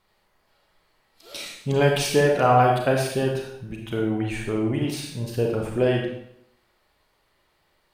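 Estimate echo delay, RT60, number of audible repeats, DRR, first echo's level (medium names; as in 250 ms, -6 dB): no echo, 0.70 s, no echo, 0.0 dB, no echo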